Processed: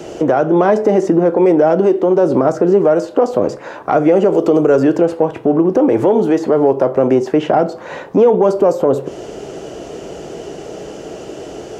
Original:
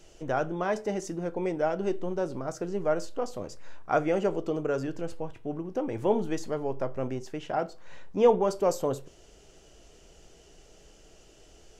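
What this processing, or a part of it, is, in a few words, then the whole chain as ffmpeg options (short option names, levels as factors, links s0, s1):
mastering chain: -filter_complex "[0:a]asettb=1/sr,asplit=3[s0][s1][s2];[s0]atrim=end=4.324[s3];[s1]atrim=start=4.32:end=4.98,asetpts=PTS-STARTPTS,afade=t=in:d=0.004:c=qsin,afade=t=out:st=0.656:d=0.004:c=qsin,highshelf=f=4000:g=10[s4];[s2]atrim=start=4.976[s5];[s3][s4]acrossfade=d=0.004:c1=hsin:c2=qsin[s6];[s6][s5]acrossfade=d=0.004:c1=qsin:c2=hsin,equalizer=f=190:t=o:w=0.77:g=-2.5,acrossover=split=290|3200[s7][s8][s9];[s7]acompressor=threshold=0.00631:ratio=4[s10];[s8]acompressor=threshold=0.0224:ratio=4[s11];[s9]acompressor=threshold=0.00178:ratio=4[s12];[s10][s11][s12]amix=inputs=3:normalize=0,acompressor=threshold=0.00794:ratio=1.5,asoftclip=type=tanh:threshold=0.0398,tiltshelf=f=1500:g=8.5,alimiter=level_in=20:limit=0.891:release=50:level=0:latency=1,highpass=180,volume=0.794"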